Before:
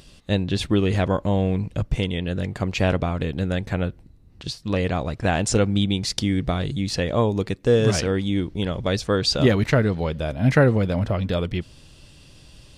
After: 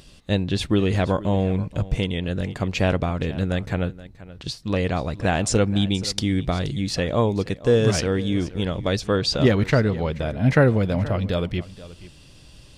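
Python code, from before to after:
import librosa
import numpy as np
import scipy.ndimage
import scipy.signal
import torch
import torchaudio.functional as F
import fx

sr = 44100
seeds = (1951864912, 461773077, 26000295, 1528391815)

p1 = fx.high_shelf(x, sr, hz=5900.0, db=-5.0, at=(9.0, 10.59))
y = p1 + fx.echo_single(p1, sr, ms=477, db=-17.5, dry=0)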